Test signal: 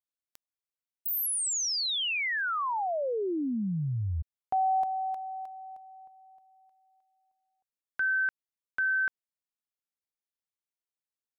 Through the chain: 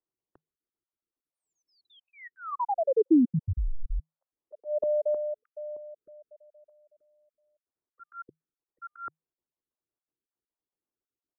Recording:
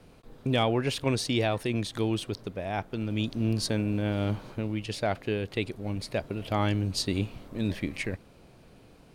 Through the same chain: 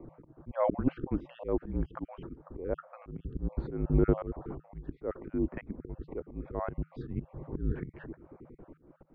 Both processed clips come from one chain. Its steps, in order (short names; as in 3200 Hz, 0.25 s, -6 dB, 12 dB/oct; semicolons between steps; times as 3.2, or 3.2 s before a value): random spectral dropouts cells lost 35%; LPF 1500 Hz 24 dB/oct; auto swell 0.261 s; bell 500 Hz +11 dB 0.82 oct; frequency shift -160 Hz; gain +3 dB